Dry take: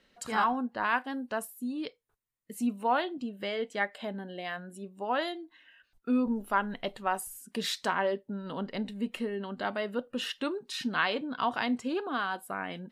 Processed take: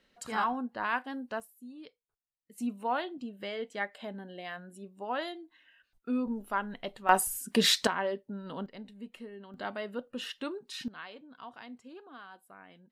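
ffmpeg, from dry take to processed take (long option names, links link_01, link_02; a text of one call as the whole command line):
ffmpeg -i in.wav -af "asetnsamples=nb_out_samples=441:pad=0,asendcmd='1.4 volume volume -12.5dB;2.58 volume volume -4dB;7.09 volume volume 8.5dB;7.87 volume volume -3dB;8.66 volume volume -11.5dB;9.54 volume volume -4.5dB;10.88 volume volume -17dB',volume=-3dB" out.wav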